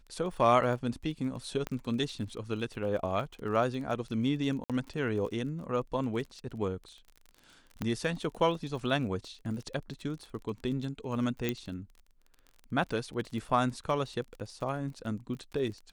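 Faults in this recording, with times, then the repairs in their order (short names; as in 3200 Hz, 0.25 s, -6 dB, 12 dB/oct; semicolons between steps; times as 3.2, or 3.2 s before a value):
crackle 30/s -40 dBFS
1.67 pop -20 dBFS
4.64–4.7 gap 57 ms
7.82 pop -20 dBFS
11.49 pop -16 dBFS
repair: de-click; interpolate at 4.64, 57 ms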